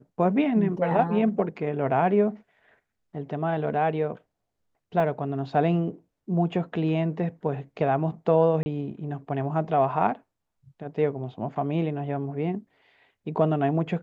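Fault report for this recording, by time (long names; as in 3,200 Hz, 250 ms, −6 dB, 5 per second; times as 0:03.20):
0:05.00: drop-out 2.2 ms
0:08.63–0:08.66: drop-out 30 ms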